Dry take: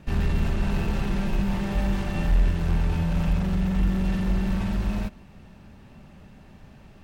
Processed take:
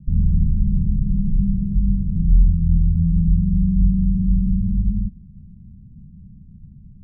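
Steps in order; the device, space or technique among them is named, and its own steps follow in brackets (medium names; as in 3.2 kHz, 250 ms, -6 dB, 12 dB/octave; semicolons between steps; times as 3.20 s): the neighbour's flat through the wall (low-pass 180 Hz 24 dB/octave; peaking EQ 190 Hz +3 dB); trim +7 dB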